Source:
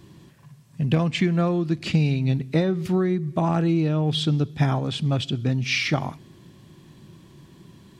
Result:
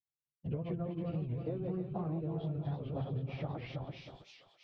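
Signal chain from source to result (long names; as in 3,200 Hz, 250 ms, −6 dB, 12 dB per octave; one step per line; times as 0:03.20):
feedback delay that plays each chunk backwards 275 ms, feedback 64%, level −4.5 dB
noise gate −37 dBFS, range −52 dB
low-pass filter 3,000 Hz 12 dB per octave
low-shelf EQ 74 Hz +6.5 dB
on a send: feedback echo with a high-pass in the loop 571 ms, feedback 69%, high-pass 1,200 Hz, level −9 dB
on the sum: time stretch by phase vocoder 0.58×
octave-band graphic EQ 250/500/1,000/2,000 Hz −8/+4/−5/−12 dB
downward compressor 6 to 1, threshold −29 dBFS, peak gain reduction 10 dB
treble cut that deepens with the level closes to 2,000 Hz, closed at −31.5 dBFS
wow of a warped record 78 rpm, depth 160 cents
level −5 dB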